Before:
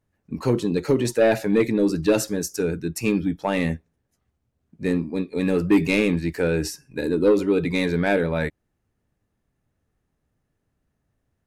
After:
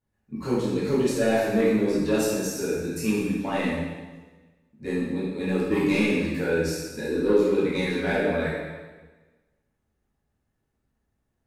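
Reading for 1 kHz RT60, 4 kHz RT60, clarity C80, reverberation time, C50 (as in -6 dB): 1.3 s, 1.2 s, 2.0 dB, 1.3 s, -1.0 dB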